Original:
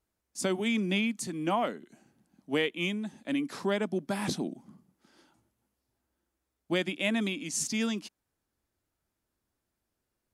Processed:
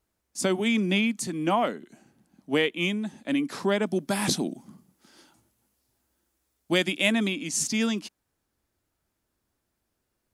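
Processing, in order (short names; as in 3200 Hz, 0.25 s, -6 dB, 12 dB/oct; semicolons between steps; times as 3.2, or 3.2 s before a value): 3.86–7.12 high shelf 3600 Hz +8 dB; gain +4.5 dB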